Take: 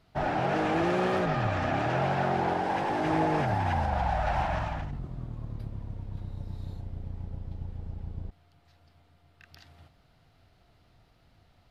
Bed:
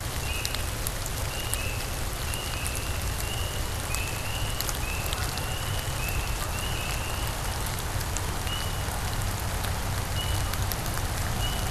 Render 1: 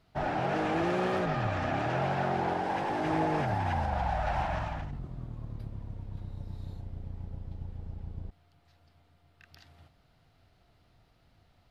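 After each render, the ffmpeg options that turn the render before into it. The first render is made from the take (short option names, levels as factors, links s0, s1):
-af "volume=0.75"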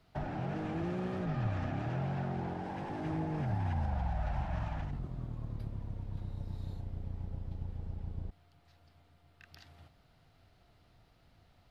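-filter_complex "[0:a]acrossover=split=260[s0][s1];[s1]acompressor=threshold=0.00891:ratio=8[s2];[s0][s2]amix=inputs=2:normalize=0"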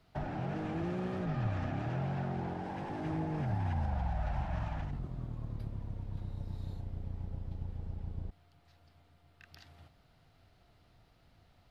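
-af anull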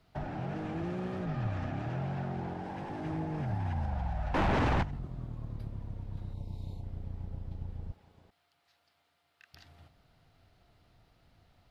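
-filter_complex "[0:a]asettb=1/sr,asplit=3[s0][s1][s2];[s0]atrim=end=4.344[s3];[s1]atrim=start=4.34:end=4.83,asetpts=PTS-STARTPTS,afade=t=in:d=0.004:c=qsin,afade=t=out:st=0.486:d=0.004:c=qsin,aeval=exprs='0.0631*sin(PI/2*4.47*val(0)/0.0631)':c=same[s4];[s2]atrim=start=4.826[s5];[s3][s4]acrossfade=d=0.004:c1=hsin:c2=qsin[s6];[s6][s5]acrossfade=d=0.004:c1=qsin:c2=hsin,asplit=3[s7][s8][s9];[s7]afade=t=out:st=6.33:d=0.02[s10];[s8]asuperstop=centerf=1500:order=12:qfactor=1.6,afade=t=in:st=6.33:d=0.02,afade=t=out:st=6.82:d=0.02[s11];[s9]afade=t=in:st=6.82:d=0.02[s12];[s10][s11][s12]amix=inputs=3:normalize=0,asettb=1/sr,asplit=3[s13][s14][s15];[s13]atrim=end=7.924[s16];[s14]atrim=start=7.92:end=9.54,asetpts=PTS-STARTPTS,afade=t=in:d=0.004:c=qsin,afade=t=out:st=1.616:d=0.004:c=qsin,highpass=f=1200:p=1[s17];[s15]atrim=start=9.536[s18];[s16][s17]acrossfade=d=0.004:c1=hsin:c2=qsin[s19];[s19][s18]acrossfade=d=0.004:c1=qsin:c2=hsin"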